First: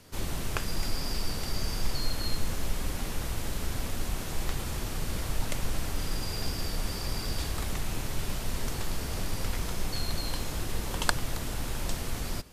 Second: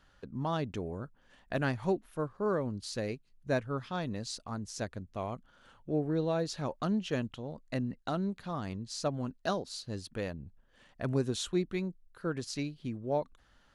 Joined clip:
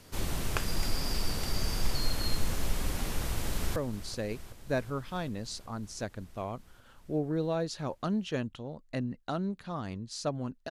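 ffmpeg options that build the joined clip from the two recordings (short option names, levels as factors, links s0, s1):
-filter_complex "[0:a]apad=whole_dur=10.7,atrim=end=10.7,atrim=end=3.762[s0];[1:a]atrim=start=2.548:end=9.49[s1];[s0][s1]acrossfade=d=0.004:c1=hsin:c2=hsin,asplit=2[s2][s3];[s3]afade=t=in:st=3.16:d=0.01,afade=t=out:st=3.76:d=0.01,aecho=0:1:380|760|1140|1520|1900|2280|2660|3040|3420|3800|4180|4560:0.188365|0.150692|0.120554|0.0964428|0.0771543|0.0617234|0.0493787|0.039503|0.0316024|0.0252819|0.0202255|0.0161804[s4];[s2][s4]amix=inputs=2:normalize=0"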